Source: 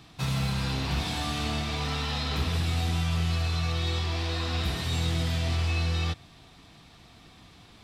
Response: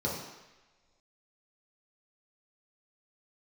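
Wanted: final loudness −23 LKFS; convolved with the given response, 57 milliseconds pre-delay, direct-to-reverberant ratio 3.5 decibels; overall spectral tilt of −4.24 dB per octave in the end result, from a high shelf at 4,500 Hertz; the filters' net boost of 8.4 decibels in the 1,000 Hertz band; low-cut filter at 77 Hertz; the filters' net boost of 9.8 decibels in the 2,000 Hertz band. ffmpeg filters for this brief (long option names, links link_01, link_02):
-filter_complex "[0:a]highpass=77,equalizer=frequency=1000:width_type=o:gain=8,equalizer=frequency=2000:width_type=o:gain=9,highshelf=frequency=4500:gain=6.5,asplit=2[link_01][link_02];[1:a]atrim=start_sample=2205,adelay=57[link_03];[link_02][link_03]afir=irnorm=-1:irlink=0,volume=-11dB[link_04];[link_01][link_04]amix=inputs=2:normalize=0,volume=0.5dB"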